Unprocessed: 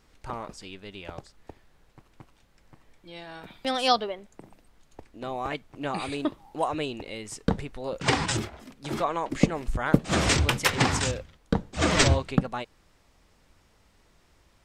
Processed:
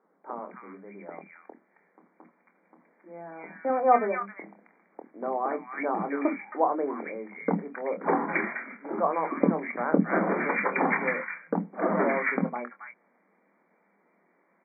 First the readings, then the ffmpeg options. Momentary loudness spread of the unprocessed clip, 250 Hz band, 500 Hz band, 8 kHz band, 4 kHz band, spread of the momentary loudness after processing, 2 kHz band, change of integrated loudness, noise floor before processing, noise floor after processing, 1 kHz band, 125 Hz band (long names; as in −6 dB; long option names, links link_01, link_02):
19 LU, −0.5 dB, +2.5 dB, below −40 dB, below −40 dB, 19 LU, 0.0 dB, −1.0 dB, −63 dBFS, −69 dBFS, +2.0 dB, −10.5 dB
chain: -filter_complex "[0:a]asplit=2[link_01][link_02];[link_02]adelay=25,volume=-8dB[link_03];[link_01][link_03]amix=inputs=2:normalize=0,dynaudnorm=framelen=400:gausssize=17:maxgain=11.5dB,acrossover=split=260|1400[link_04][link_05][link_06];[link_04]adelay=50[link_07];[link_06]adelay=270[link_08];[link_07][link_05][link_08]amix=inputs=3:normalize=0,afftfilt=real='re*between(b*sr/4096,170,2400)':imag='im*between(b*sr/4096,170,2400)':win_size=4096:overlap=0.75"